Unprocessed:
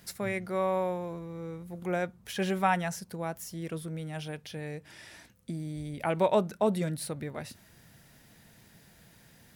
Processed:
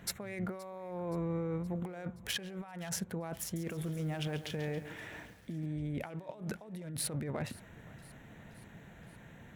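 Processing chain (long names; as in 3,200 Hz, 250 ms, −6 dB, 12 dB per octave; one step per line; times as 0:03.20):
adaptive Wiener filter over 9 samples
compressor whose output falls as the input rises −40 dBFS, ratio −1
feedback echo with a high-pass in the loop 522 ms, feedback 62%, level −20.5 dB
0:03.42–0:05.66: feedback echo at a low word length 138 ms, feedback 55%, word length 9 bits, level −11 dB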